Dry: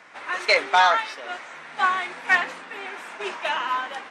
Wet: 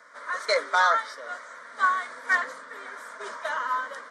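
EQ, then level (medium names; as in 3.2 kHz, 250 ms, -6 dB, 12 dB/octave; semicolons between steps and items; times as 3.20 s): high-pass 340 Hz 12 dB/octave; static phaser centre 530 Hz, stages 8; 0.0 dB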